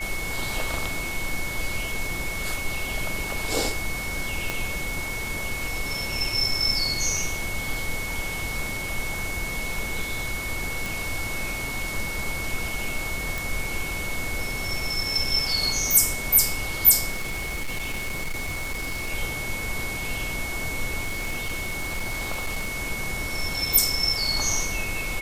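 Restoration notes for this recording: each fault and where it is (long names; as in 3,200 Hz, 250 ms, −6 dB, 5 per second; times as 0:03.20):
whistle 2,200 Hz −31 dBFS
0:04.50: click −11 dBFS
0:10.86: click
0:13.38: click
0:17.11–0:19.12: clipping −25 dBFS
0:21.01–0:22.75: clipping −23.5 dBFS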